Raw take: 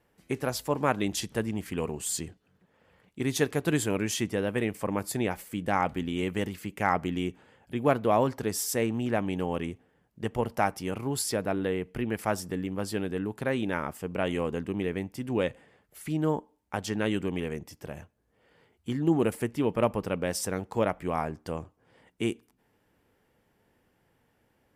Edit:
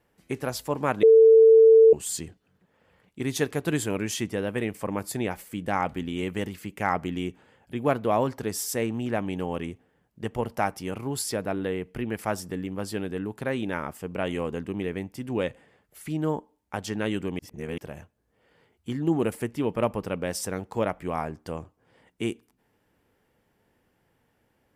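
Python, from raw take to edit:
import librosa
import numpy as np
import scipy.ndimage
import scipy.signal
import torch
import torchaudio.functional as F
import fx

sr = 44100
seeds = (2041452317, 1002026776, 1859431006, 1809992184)

y = fx.edit(x, sr, fx.bleep(start_s=1.03, length_s=0.9, hz=447.0, db=-10.5),
    fx.reverse_span(start_s=17.39, length_s=0.39), tone=tone)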